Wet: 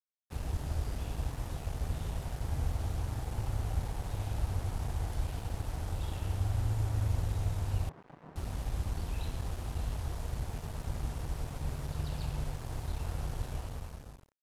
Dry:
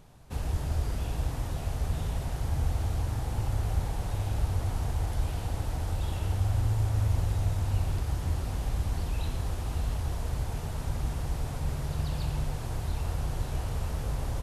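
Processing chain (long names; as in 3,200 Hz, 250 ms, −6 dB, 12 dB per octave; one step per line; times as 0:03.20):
fade-out on the ending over 0.96 s
0:07.89–0:08.36: elliptic band-pass filter 160–1,100 Hz
dead-zone distortion −43 dBFS
level −3.5 dB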